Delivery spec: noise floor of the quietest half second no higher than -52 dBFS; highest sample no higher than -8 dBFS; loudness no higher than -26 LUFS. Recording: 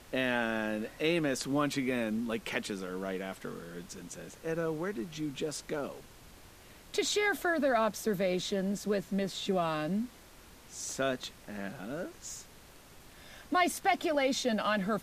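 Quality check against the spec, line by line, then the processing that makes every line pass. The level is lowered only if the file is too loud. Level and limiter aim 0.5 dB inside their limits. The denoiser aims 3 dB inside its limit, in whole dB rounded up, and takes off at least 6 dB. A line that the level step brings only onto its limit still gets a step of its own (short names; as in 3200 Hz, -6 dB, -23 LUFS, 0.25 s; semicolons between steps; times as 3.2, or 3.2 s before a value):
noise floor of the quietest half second -55 dBFS: OK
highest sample -15.5 dBFS: OK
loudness -33.0 LUFS: OK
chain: none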